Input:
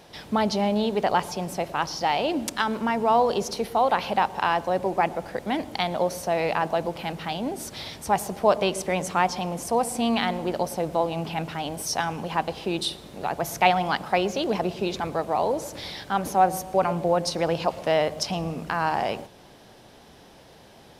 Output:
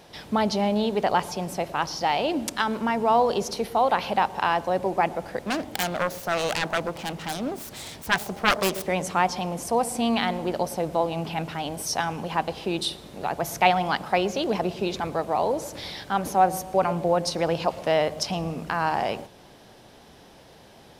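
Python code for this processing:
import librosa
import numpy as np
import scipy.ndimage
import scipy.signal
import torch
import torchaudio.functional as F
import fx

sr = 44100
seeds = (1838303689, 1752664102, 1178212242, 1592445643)

y = fx.self_delay(x, sr, depth_ms=0.87, at=(5.42, 8.88))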